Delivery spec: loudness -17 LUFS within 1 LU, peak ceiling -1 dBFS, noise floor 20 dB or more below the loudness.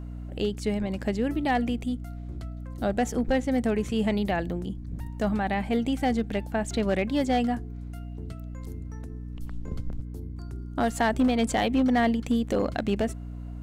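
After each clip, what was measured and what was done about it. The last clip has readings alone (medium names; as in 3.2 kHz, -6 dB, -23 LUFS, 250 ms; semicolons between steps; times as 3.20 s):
clipped samples 0.5%; clipping level -17.0 dBFS; hum 60 Hz; highest harmonic 300 Hz; hum level -35 dBFS; loudness -27.5 LUFS; peak level -17.0 dBFS; loudness target -17.0 LUFS
-> clip repair -17 dBFS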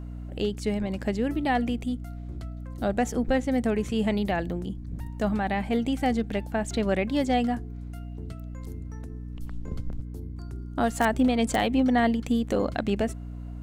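clipped samples 0.0%; hum 60 Hz; highest harmonic 300 Hz; hum level -34 dBFS
-> de-hum 60 Hz, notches 5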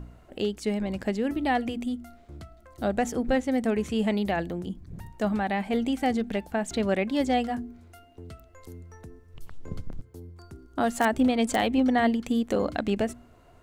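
hum not found; loudness -27.0 LUFS; peak level -10.0 dBFS; loudness target -17.0 LUFS
-> trim +10 dB; peak limiter -1 dBFS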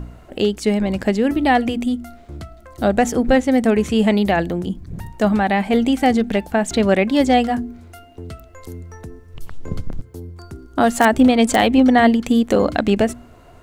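loudness -17.5 LUFS; peak level -1.0 dBFS; noise floor -45 dBFS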